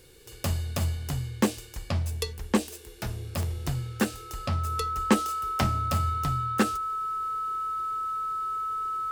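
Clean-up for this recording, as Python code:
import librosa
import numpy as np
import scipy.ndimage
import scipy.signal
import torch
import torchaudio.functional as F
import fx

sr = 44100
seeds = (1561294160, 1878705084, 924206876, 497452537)

y = fx.fix_declick_ar(x, sr, threshold=10.0)
y = fx.notch(y, sr, hz=1300.0, q=30.0)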